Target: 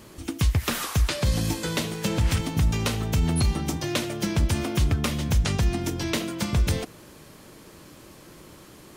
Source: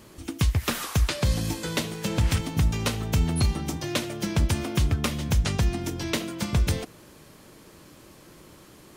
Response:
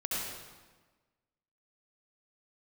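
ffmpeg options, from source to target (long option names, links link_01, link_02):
-af "alimiter=limit=-16dB:level=0:latency=1:release=43,volume=2.5dB"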